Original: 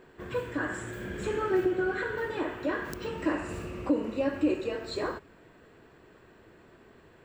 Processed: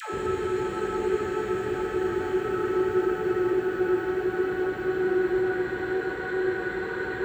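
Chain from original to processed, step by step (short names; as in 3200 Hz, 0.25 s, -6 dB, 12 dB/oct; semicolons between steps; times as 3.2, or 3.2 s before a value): Paulstretch 11×, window 1.00 s, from 1.32; dispersion lows, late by 0.136 s, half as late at 510 Hz; gain +1 dB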